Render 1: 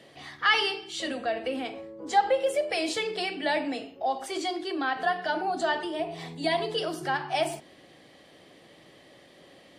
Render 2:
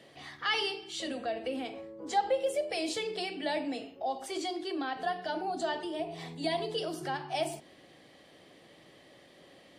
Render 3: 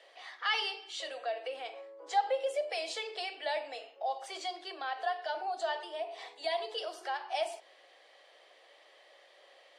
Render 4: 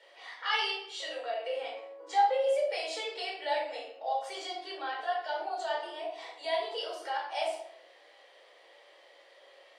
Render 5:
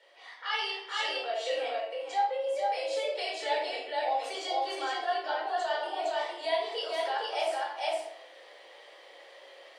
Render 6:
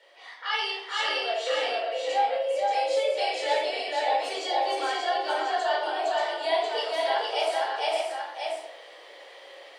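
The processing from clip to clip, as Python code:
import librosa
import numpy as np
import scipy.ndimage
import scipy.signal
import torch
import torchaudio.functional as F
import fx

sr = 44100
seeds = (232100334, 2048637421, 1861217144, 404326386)

y1 = fx.dynamic_eq(x, sr, hz=1500.0, q=0.86, threshold_db=-41.0, ratio=4.0, max_db=-7)
y1 = y1 * librosa.db_to_amplitude(-3.0)
y2 = scipy.signal.sosfilt(scipy.signal.cheby2(4, 50, 200.0, 'highpass', fs=sr, output='sos'), y1)
y2 = fx.air_absorb(y2, sr, metres=52.0)
y3 = fx.room_shoebox(y2, sr, seeds[0], volume_m3=860.0, walls='furnished', distance_m=4.6)
y3 = y3 * librosa.db_to_amplitude(-4.0)
y4 = y3 + 10.0 ** (-3.0 / 20.0) * np.pad(y3, (int(461 * sr / 1000.0), 0))[:len(y3)]
y4 = fx.rider(y4, sr, range_db=4, speed_s=0.5)
y5 = y4 + 10.0 ** (-4.0 / 20.0) * np.pad(y4, (int(581 * sr / 1000.0), 0))[:len(y4)]
y5 = y5 * librosa.db_to_amplitude(3.5)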